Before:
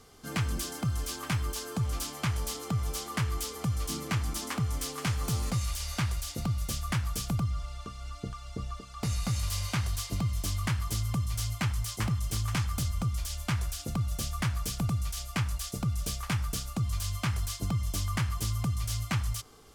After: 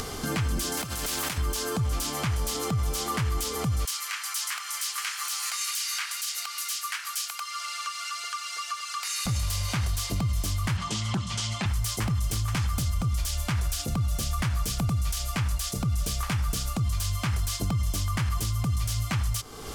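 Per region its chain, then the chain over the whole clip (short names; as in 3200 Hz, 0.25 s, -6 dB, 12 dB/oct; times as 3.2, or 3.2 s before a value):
0.77–1.38 negative-ratio compressor -38 dBFS + spectral compressor 2:1
3.85–9.26 HPF 1300 Hz 24 dB/oct + notch 3500 Hz, Q 29
10.77–11.66 speaker cabinet 170–7900 Hz, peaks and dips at 190 Hz +10 dB, 890 Hz +4 dB, 3100 Hz +6 dB + Doppler distortion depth 0.44 ms
whole clip: upward compressor, threshold -31 dBFS; limiter -28 dBFS; gain +8 dB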